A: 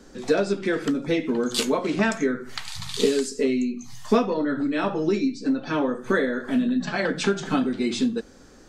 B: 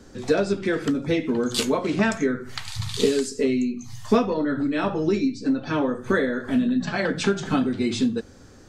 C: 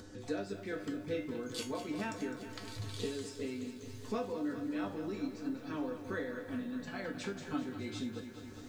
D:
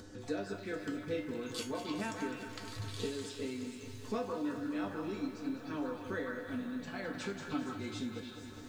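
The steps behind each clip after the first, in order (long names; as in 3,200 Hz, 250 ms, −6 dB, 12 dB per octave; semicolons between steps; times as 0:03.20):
parametric band 100 Hz +15 dB 0.63 octaves
upward compression, threshold −25 dBFS; tuned comb filter 100 Hz, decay 0.28 s, harmonics odd, mix 80%; feedback echo at a low word length 206 ms, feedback 80%, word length 9 bits, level −11 dB; level −7 dB
echo through a band-pass that steps 153 ms, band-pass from 1,200 Hz, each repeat 1.4 octaves, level −1.5 dB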